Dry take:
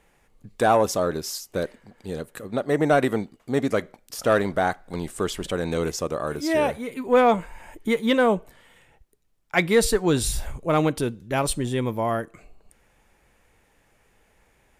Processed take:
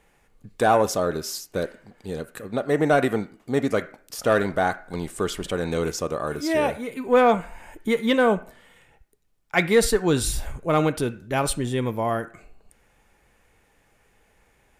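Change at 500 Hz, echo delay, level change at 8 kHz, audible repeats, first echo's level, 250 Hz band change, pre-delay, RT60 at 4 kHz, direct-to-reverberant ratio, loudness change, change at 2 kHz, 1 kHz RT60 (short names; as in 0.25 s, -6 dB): +0.5 dB, none, 0.0 dB, none, none, 0.0 dB, 3 ms, 0.35 s, 10.0 dB, 0.0 dB, +1.0 dB, 0.45 s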